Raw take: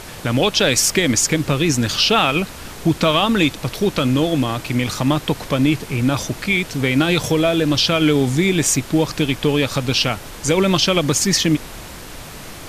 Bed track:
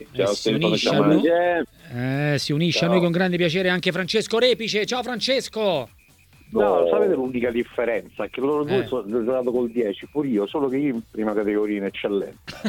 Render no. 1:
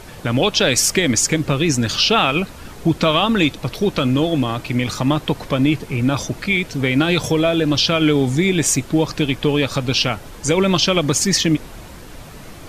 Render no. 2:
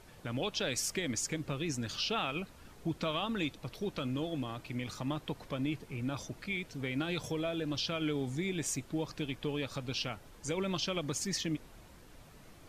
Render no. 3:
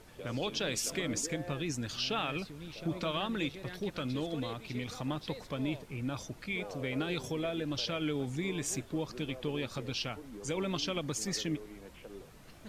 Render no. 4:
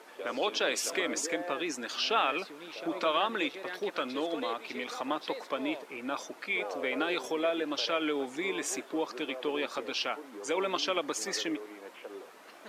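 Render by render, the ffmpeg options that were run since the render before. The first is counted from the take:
-af "afftdn=nr=7:nf=-35"
-af "volume=-18.5dB"
-filter_complex "[1:a]volume=-25.5dB[a];[0:a][a]amix=inputs=2:normalize=0"
-af "highpass=f=280:w=0.5412,highpass=f=280:w=1.3066,equalizer=f=1.1k:w=0.45:g=9"

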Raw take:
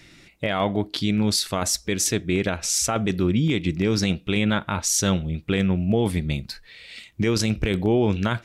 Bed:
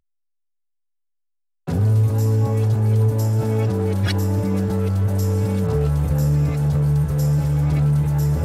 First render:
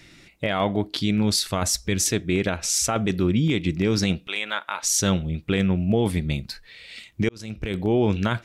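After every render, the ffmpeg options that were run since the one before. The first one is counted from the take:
-filter_complex "[0:a]asettb=1/sr,asplit=3[a][b][c];[a]atrim=end=1.224[d];[b]atrim=start=1.22:end=2.03,asetpts=PTS-STARTPTS,afade=t=in:d=0.004:c=qsin,afade=t=out:st=0.806:d=0.004:c=qsin,asubboost=boost=7:cutoff=190[e];[c]atrim=start=2.026[f];[d][e]acrossfade=d=0.004:c1=hsin:c2=qsin[g];[g][f]acrossfade=d=0.004:c1=qsin:c2=hsin,asettb=1/sr,asplit=3[h][i][j];[h]atrim=end=4.274[k];[i]atrim=start=4.27:end=4.83,asetpts=PTS-STARTPTS,afade=t=in:d=0.004:c=qsin,afade=t=out:st=0.556:d=0.004:c=qsin,highpass=810[l];[j]atrim=start=4.826[m];[k][l]acrossfade=d=0.004:c1=hsin:c2=qsin[n];[n][m]acrossfade=d=0.004:c1=qsin:c2=hsin,asplit=2[o][p];[o]atrim=end=7.29,asetpts=PTS-STARTPTS,afade=t=out:st=7.286:d=0.004:c=hsin[q];[p]atrim=start=7.29,asetpts=PTS-STARTPTS,afade=t=in:d=0.72[r];[q][r]concat=n=2:v=0:a=1"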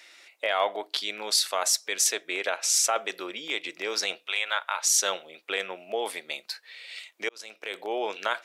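-af "highpass=f=530:w=0.5412,highpass=f=530:w=1.3066"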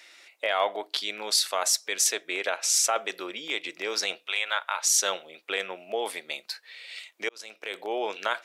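-af anull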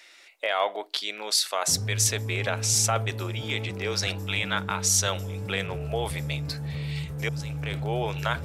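-filter_complex "[1:a]volume=-14dB[a];[0:a][a]amix=inputs=2:normalize=0"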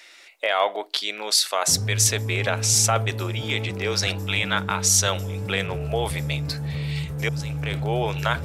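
-af "volume=4dB"

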